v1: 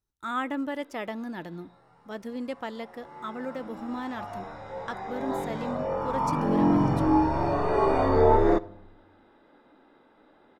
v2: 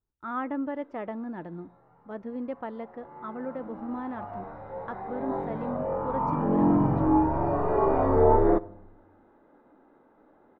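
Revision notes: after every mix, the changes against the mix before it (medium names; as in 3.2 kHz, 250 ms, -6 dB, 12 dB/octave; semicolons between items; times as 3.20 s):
master: add low-pass 1.3 kHz 12 dB/octave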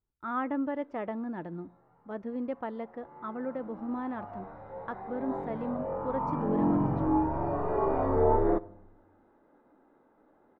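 background -4.5 dB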